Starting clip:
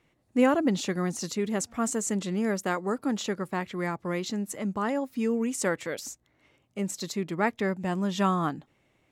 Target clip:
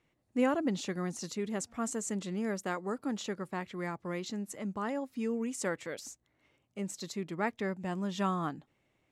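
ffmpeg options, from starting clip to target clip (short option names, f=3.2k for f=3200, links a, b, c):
-af "lowpass=12k,volume=-6.5dB"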